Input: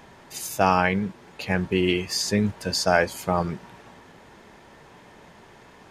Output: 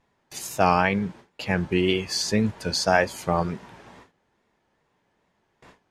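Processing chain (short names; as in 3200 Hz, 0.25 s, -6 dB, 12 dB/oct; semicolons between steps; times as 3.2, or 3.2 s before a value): wow and flutter 85 cents; gate with hold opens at -37 dBFS; Bessel low-pass 11000 Hz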